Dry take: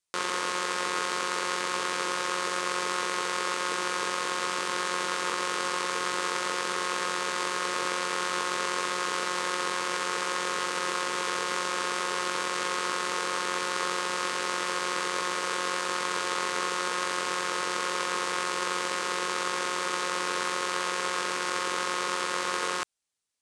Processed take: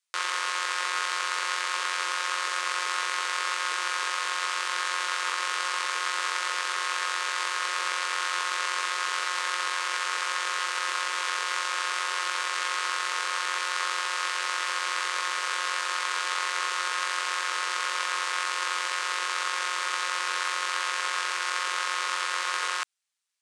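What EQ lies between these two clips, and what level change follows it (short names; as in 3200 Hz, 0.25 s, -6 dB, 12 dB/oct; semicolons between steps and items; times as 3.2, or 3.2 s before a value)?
HPF 1400 Hz 12 dB/oct; tilt -2 dB/oct; +6.0 dB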